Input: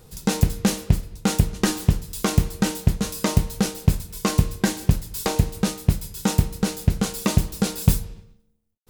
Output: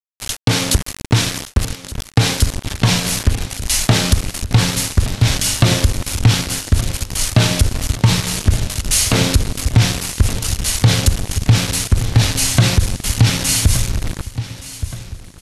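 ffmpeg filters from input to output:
-filter_complex "[0:a]highshelf=f=7.4k:g=3.5,acompressor=threshold=-22dB:ratio=10,asubboost=boost=5.5:cutoff=210,acrossover=split=160|3000[a][b][c];[a]acompressor=threshold=-49dB:ratio=1.5[d];[d][b][c]amix=inputs=3:normalize=0,aeval=exprs='val(0)*gte(abs(val(0)),0.0251)':c=same,aecho=1:1:676|1352|2028|2704:0.15|0.0688|0.0317|0.0146,asetrate=25442,aresample=44100,alimiter=level_in=15dB:limit=-1dB:release=50:level=0:latency=1,volume=-1dB"

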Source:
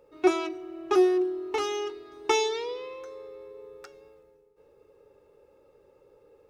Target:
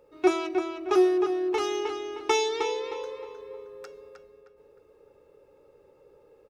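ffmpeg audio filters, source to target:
-filter_complex "[0:a]asplit=2[a][b];[b]adelay=310,lowpass=f=3.7k:p=1,volume=-5.5dB,asplit=2[c][d];[d]adelay=310,lowpass=f=3.7k:p=1,volume=0.36,asplit=2[e][f];[f]adelay=310,lowpass=f=3.7k:p=1,volume=0.36,asplit=2[g][h];[h]adelay=310,lowpass=f=3.7k:p=1,volume=0.36[i];[a][c][e][g][i]amix=inputs=5:normalize=0"

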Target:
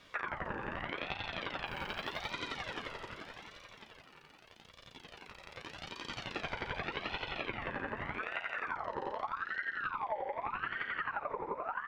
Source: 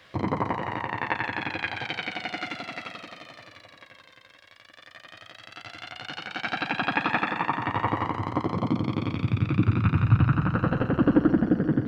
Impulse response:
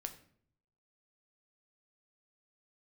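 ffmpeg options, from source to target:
-filter_complex "[0:a]equalizer=f=3.5k:w=0.84:g=-7.5,acompressor=threshold=-32dB:ratio=12,asplit=2[a][b];[b]adelay=326.5,volume=-8dB,highshelf=f=4k:g=-7.35[c];[a][c]amix=inputs=2:normalize=0,asettb=1/sr,asplit=3[d][e][f];[d]atrim=end=1.664[g];[e]atrim=start=1.66:end=2.32,asetpts=PTS-STARTPTS,afade=t=in:d=0.004:c=qsin,afade=t=out:st=0.656:d=0.004:c=qsin,acrusher=bits=7:mode=log:mix=0:aa=0.000001[h];[f]atrim=start=2.316[i];[g][h]acrossfade=d=0.004:c1=hsin:c2=qsin[j];[j][i]acrossfade=d=0.004:c1=qsin:c2=hsin,aeval=exprs='val(0)*sin(2*PI*1200*n/s+1200*0.45/0.83*sin(2*PI*0.83*n/s))':c=same"

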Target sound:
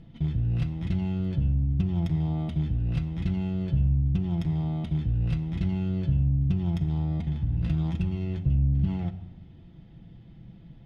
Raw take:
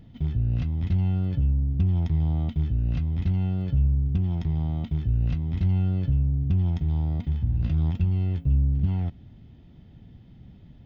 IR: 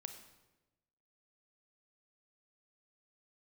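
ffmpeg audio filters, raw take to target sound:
-filter_complex "[0:a]adynamicsmooth=sensitivity=6:basefreq=3.2k,aemphasis=mode=production:type=75fm,asplit=2[a][b];[1:a]atrim=start_sample=2205,adelay=6[c];[b][c]afir=irnorm=-1:irlink=0,volume=0dB[d];[a][d]amix=inputs=2:normalize=0"

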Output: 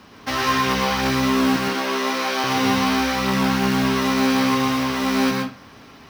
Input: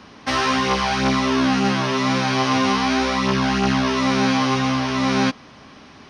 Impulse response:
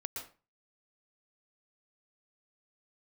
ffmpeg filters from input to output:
-filter_complex "[0:a]asettb=1/sr,asplit=3[a][b][c];[a]atrim=end=1.564[d];[b]atrim=start=1.56:end=2.44,asetpts=PTS-STARTPTS,afade=t=in:d=0.004:c=qsin,afade=t=out:st=0.876:d=0.004:c=qsin,highpass=f=290:w=0.5412,highpass=f=290:w=1.3066[e];[c]atrim=start=2.436[f];[d][e]acrossfade=d=0.004:c1=hsin:c2=qsin[g];[g][f]acrossfade=d=0.004:c1=qsin:c2=hsin,acrusher=bits=4:mode=log:mix=0:aa=0.000001[h];[1:a]atrim=start_sample=2205[i];[h][i]afir=irnorm=-1:irlink=0"

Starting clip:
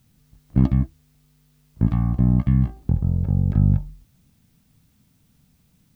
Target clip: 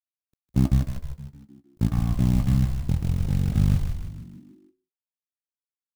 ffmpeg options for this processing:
-filter_complex "[0:a]acrusher=bits=6:mode=log:mix=0:aa=0.000001,aeval=exprs='sgn(val(0))*max(abs(val(0))-0.00708,0)':c=same,asplit=7[a][b][c][d][e][f][g];[b]adelay=154,afreqshift=-69,volume=-6dB[h];[c]adelay=308,afreqshift=-138,volume=-12.2dB[i];[d]adelay=462,afreqshift=-207,volume=-18.4dB[j];[e]adelay=616,afreqshift=-276,volume=-24.6dB[k];[f]adelay=770,afreqshift=-345,volume=-30.8dB[l];[g]adelay=924,afreqshift=-414,volume=-37dB[m];[a][h][i][j][k][l][m]amix=inputs=7:normalize=0,volume=-3.5dB"

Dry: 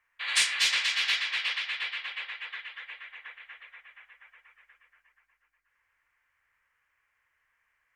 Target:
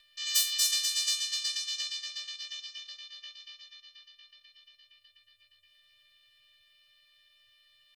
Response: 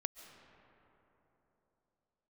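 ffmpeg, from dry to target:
-af "afftfilt=real='hypot(re,im)*cos(PI*b)':imag='0':win_size=512:overlap=0.75,asetrate=76340,aresample=44100,atempo=0.577676,acompressor=mode=upward:threshold=-52dB:ratio=2.5,volume=1.5dB"

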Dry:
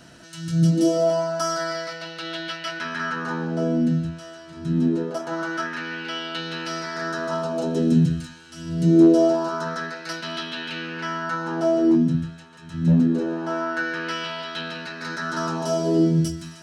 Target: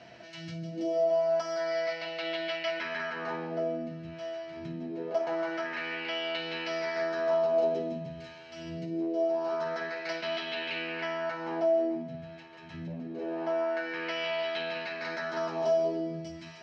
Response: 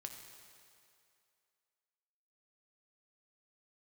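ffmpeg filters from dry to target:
-filter_complex "[0:a]acompressor=threshold=-27dB:ratio=6,highpass=120,equalizer=f=160:t=q:w=4:g=-9,equalizer=f=270:t=q:w=4:g=-9,equalizer=f=680:t=q:w=4:g=9,equalizer=f=1.4k:t=q:w=4:g=-8,equalizer=f=2.2k:t=q:w=4:g=9,equalizer=f=3.7k:t=q:w=4:g=-4,lowpass=f=4.7k:w=0.5412,lowpass=f=4.7k:w=1.3066,asplit=2[a][b];[1:a]atrim=start_sample=2205,adelay=55[c];[b][c]afir=irnorm=-1:irlink=0,volume=-6.5dB[d];[a][d]amix=inputs=2:normalize=0,volume=-3dB"

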